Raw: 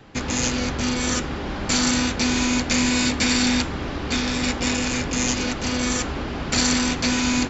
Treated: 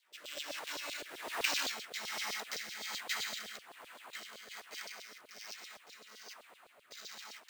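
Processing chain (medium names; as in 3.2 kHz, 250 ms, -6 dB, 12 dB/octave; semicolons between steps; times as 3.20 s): Doppler pass-by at 1.68 s, 51 m/s, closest 2.7 m; high-pass 81 Hz; compression 6:1, threshold -46 dBFS, peak gain reduction 24 dB; rotary cabinet horn 1.2 Hz; sample-and-hold 4×; LFO high-pass saw down 7.8 Hz 500–4300 Hz; trim +13 dB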